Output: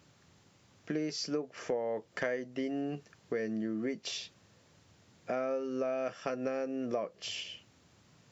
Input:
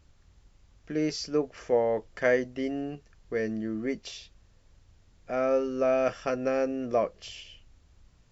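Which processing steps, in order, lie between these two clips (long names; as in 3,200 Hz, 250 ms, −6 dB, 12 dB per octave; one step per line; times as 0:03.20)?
high-pass filter 120 Hz 24 dB per octave
downward compressor 6 to 1, threshold −37 dBFS, peak gain reduction 16.5 dB
level +5 dB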